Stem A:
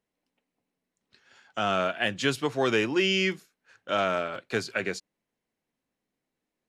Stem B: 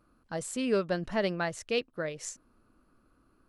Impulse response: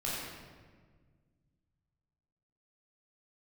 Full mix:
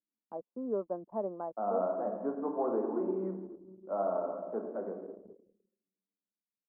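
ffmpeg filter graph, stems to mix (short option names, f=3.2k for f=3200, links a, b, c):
-filter_complex "[0:a]volume=-6.5dB,asplit=2[a][b];[b]volume=-4.5dB[c];[1:a]volume=-3dB[d];[2:a]atrim=start_sample=2205[e];[c][e]afir=irnorm=-1:irlink=0[f];[a][d][f]amix=inputs=3:normalize=0,asuperpass=centerf=460:order=12:qfactor=0.53,lowshelf=f=370:g=-6,anlmdn=0.01"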